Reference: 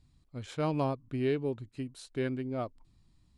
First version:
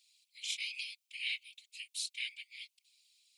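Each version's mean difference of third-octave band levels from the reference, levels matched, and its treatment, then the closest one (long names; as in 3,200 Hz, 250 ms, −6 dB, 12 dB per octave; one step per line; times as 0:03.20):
21.5 dB: Butterworth high-pass 2,300 Hz 72 dB per octave
random phases in short frames
level +11.5 dB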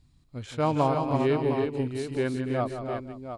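7.0 dB: dynamic equaliser 910 Hz, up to +6 dB, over −45 dBFS, Q 1.3
on a send: multi-tap delay 171/290/327/509/709 ms −9.5/−9.5/−5.5/−18/−9 dB
on the sum: level +3.5 dB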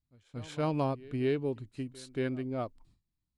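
1.5 dB: noise gate with hold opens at −52 dBFS
echo ahead of the sound 230 ms −21 dB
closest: third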